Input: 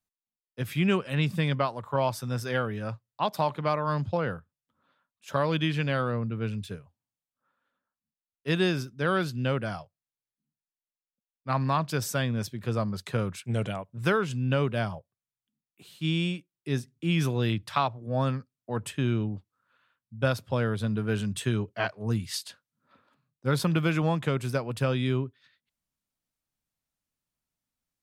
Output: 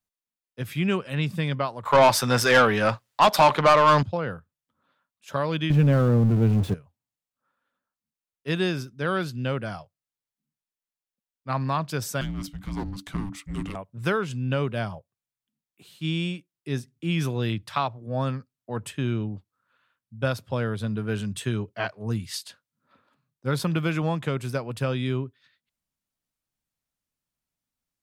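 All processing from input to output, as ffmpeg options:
ffmpeg -i in.wav -filter_complex "[0:a]asettb=1/sr,asplit=3[link_01][link_02][link_03];[link_01]atrim=end=1.854[link_04];[link_02]atrim=start=1.85:end=4.03,asetpts=PTS-STARTPTS,afade=type=in:duration=0.004:curve=qsin,afade=type=out:start_time=2.176:duration=0.004:curve=qsin,aeval=exprs='if(lt(val(0),0),0.708*val(0),val(0))':channel_layout=same,acontrast=56,asplit=2[link_05][link_06];[link_06]highpass=frequency=720:poles=1,volume=20dB,asoftclip=type=tanh:threshold=-7dB[link_07];[link_05][link_07]amix=inputs=2:normalize=0,lowpass=frequency=6300:poles=1,volume=-6dB[link_08];[link_03]atrim=start=4.026[link_09];[link_04][link_08]acrossfade=duration=0.004:curve1=hsin:curve2=qsin[link_10];[link_10][link_09]acrossfade=duration=0.004:curve1=qsin:curve2=hsin,asettb=1/sr,asplit=3[link_11][link_12][link_13];[link_11]atrim=end=5.704[link_14];[link_12]atrim=start=5.7:end=6.74,asetpts=PTS-STARTPTS,afade=type=in:duration=0.004:curve=qsin,afade=type=out:start_time=1.036:duration=0.004:curve=qsin,aeval=exprs='val(0)+0.5*0.0335*sgn(val(0))':channel_layout=same,tiltshelf=frequency=860:gain=9[link_15];[link_13]atrim=start=6.736[link_16];[link_14][link_15]acrossfade=duration=0.004:curve1=hsin:curve2=qsin[link_17];[link_17][link_16]acrossfade=duration=0.004:curve1=qsin:curve2=hsin,asettb=1/sr,asplit=3[link_18][link_19][link_20];[link_18]atrim=end=12.214[link_21];[link_19]atrim=start=12.21:end=13.75,asetpts=PTS-STARTPTS,afade=type=in:duration=0.004:curve=qsin,afade=type=out:start_time=1.536:duration=0.004:curve=qsin,aeval=exprs='clip(val(0),-1,0.0158)':channel_layout=same,afreqshift=-290[link_22];[link_20]atrim=start=13.746[link_23];[link_21][link_22]acrossfade=duration=0.004:curve1=hsin:curve2=qsin[link_24];[link_24][link_23]acrossfade=duration=0.004:curve1=qsin:curve2=hsin" out.wav

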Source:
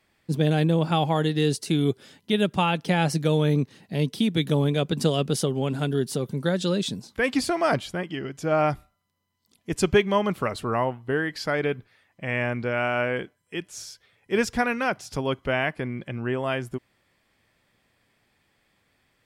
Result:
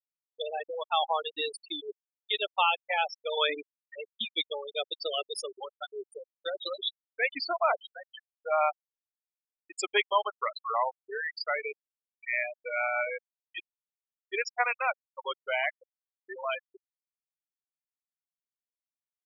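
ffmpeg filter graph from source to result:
ffmpeg -i in.wav -filter_complex "[0:a]asettb=1/sr,asplit=3[link_01][link_02][link_03];[link_01]atrim=end=3.374[link_04];[link_02]atrim=start=3.37:end=3.95,asetpts=PTS-STARTPTS,afade=type=in:duration=0.004:curve=qsin,afade=type=out:start_time=0.576:duration=0.004:curve=qsin,acontrast=85,highpass=100,lowpass=3600,tiltshelf=frequency=790:gain=-5.5[link_05];[link_03]atrim=start=3.946[link_06];[link_04][link_05]acrossfade=duration=0.004:curve1=hsin:curve2=qsin[link_07];[link_07][link_06]acrossfade=duration=0.004:curve1=qsin:curve2=hsin,highpass=900,equalizer=frequency=1600:width=5.9:gain=-8,afftfilt=real='re*gte(hypot(re,im),0.0794)':imag='im*gte(hypot(re,im),0.0794)':win_size=1024:overlap=0.75,volume=2.5dB" out.wav

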